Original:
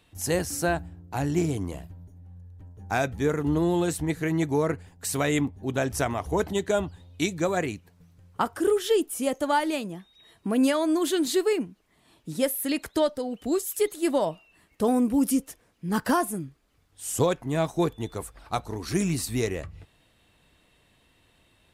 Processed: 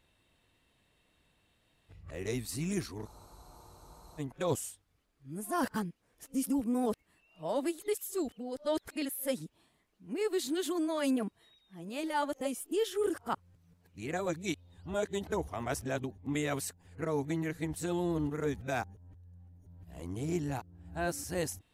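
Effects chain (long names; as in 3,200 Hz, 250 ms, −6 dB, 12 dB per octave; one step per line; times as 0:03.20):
played backwards from end to start
frozen spectrum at 0:03.08, 1.12 s
level −8.5 dB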